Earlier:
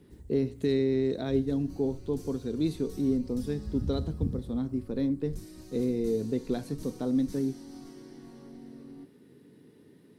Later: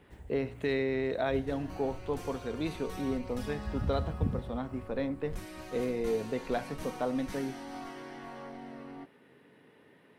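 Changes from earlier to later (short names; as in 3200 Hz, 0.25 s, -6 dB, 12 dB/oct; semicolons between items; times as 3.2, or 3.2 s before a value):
speech -7.0 dB; master: add band shelf 1300 Hz +15.5 dB 2.9 oct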